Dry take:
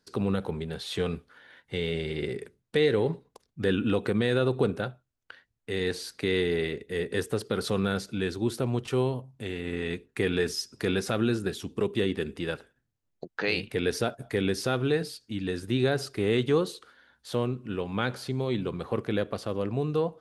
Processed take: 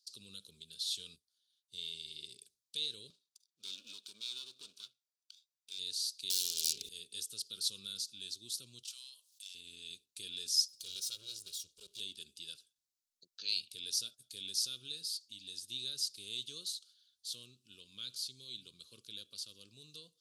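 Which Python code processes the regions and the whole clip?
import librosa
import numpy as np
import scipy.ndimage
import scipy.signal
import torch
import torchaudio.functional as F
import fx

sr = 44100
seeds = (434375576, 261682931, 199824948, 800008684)

y = fx.chain(x, sr, fx.peak_eq(hz=2300.0, db=-10.0, octaves=1.6),
    fx.upward_expand(threshold_db=-48.0, expansion=1.5), at=(1.16, 1.78))
y = fx.chain(y, sr, fx.lower_of_two(delay_ms=0.84),
    fx.highpass(hz=340.0, slope=12),
    fx.high_shelf(hz=7200.0, db=-8.5), at=(3.1, 5.79))
y = fx.chain(y, sr, fx.self_delay(depth_ms=0.75),
    fx.env_flatten(amount_pct=100), at=(6.3, 6.89))
y = fx.chain(y, sr, fx.highpass(hz=840.0, slope=24),
    fx.tube_stage(drive_db=31.0, bias=0.6),
    fx.env_flatten(amount_pct=50), at=(8.83, 9.55))
y = fx.chain(y, sr, fx.lower_of_two(delay_ms=2.1),
    fx.highpass(hz=61.0, slope=6),
    fx.transformer_sat(knee_hz=560.0), at=(10.68, 12.0))
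y = scipy.signal.sosfilt(scipy.signal.cheby2(4, 40, 2100.0, 'highpass', fs=sr, output='sos'), y)
y = fx.high_shelf(y, sr, hz=5600.0, db=-8.0)
y = y * librosa.db_to_amplitude(8.0)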